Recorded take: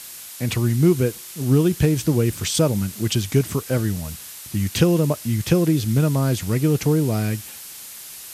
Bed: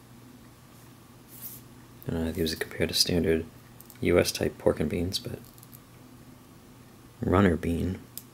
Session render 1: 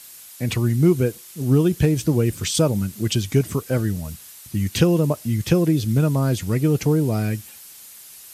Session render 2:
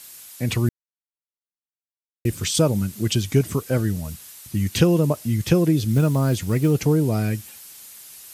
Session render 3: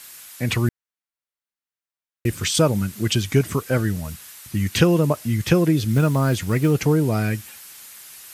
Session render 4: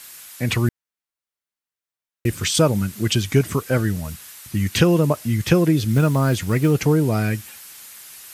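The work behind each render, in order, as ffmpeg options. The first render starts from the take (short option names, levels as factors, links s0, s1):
-af "afftdn=nr=7:nf=-38"
-filter_complex "[0:a]asettb=1/sr,asplit=3[s0][s1][s2];[s0]atrim=end=5.934[s3];[s1]atrim=start=5.93:end=6.71,asetpts=PTS-STARTPTS,afade=t=in:d=0.004:c=qsin,afade=t=out:st=0.776:d=0.004:c=qsin,acrusher=bits=8:mode=log:mix=0:aa=0.000001[s4];[s2]atrim=start=6.706[s5];[s3][s4]acrossfade=d=0.004:c1=hsin:c2=qsin[s6];[s6][s5]acrossfade=d=0.004:c1=qsin:c2=hsin,asplit=3[s7][s8][s9];[s7]atrim=end=0.69,asetpts=PTS-STARTPTS,afade=t=out:st=0.686:d=0.004:c=hsin[s10];[s8]atrim=start=0.69:end=2.25,asetpts=PTS-STARTPTS,volume=0[s11];[s9]atrim=start=2.25,asetpts=PTS-STARTPTS,afade=t=in:d=0.004:c=hsin[s12];[s10][s11][s12]concat=n=3:v=0:a=1"
-af "equalizer=f=1600:t=o:w=1.8:g=6.5"
-af "volume=1.12,alimiter=limit=0.708:level=0:latency=1"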